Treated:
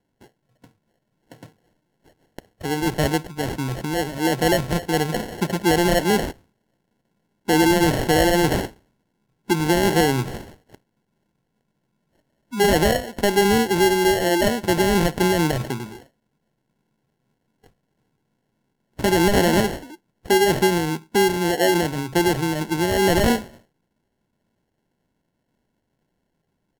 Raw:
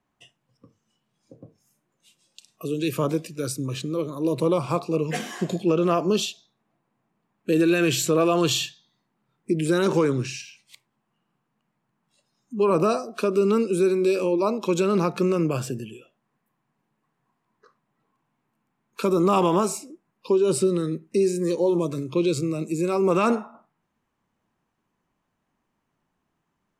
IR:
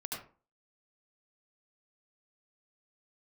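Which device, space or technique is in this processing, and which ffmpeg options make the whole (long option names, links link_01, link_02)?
crushed at another speed: -af "asetrate=55125,aresample=44100,acrusher=samples=29:mix=1:aa=0.000001,asetrate=35280,aresample=44100,volume=3dB"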